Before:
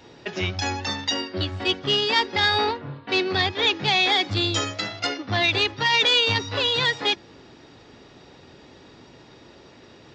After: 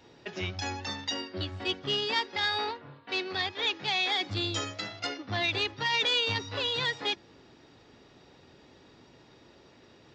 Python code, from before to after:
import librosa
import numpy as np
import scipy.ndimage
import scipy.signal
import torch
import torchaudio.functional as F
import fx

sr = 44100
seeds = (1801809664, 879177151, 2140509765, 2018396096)

y = fx.low_shelf(x, sr, hz=340.0, db=-8.5, at=(2.19, 4.21))
y = F.gain(torch.from_numpy(y), -8.0).numpy()